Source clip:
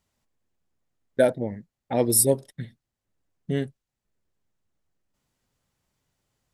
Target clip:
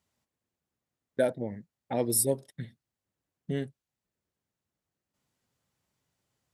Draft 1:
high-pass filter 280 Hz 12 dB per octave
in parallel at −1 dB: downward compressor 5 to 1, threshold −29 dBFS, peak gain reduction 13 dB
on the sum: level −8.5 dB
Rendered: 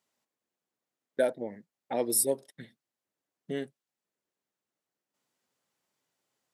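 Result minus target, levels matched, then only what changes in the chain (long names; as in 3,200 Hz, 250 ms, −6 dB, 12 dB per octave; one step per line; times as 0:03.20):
125 Hz band −11.5 dB
change: high-pass filter 76 Hz 12 dB per octave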